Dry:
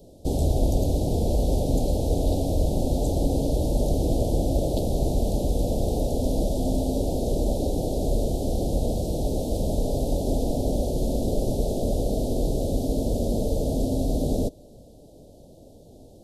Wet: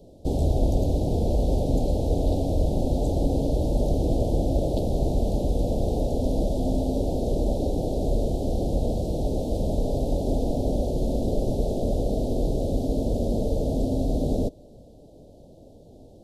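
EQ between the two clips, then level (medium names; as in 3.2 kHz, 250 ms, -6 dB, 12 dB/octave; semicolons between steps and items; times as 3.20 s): treble shelf 5.4 kHz -10.5 dB; 0.0 dB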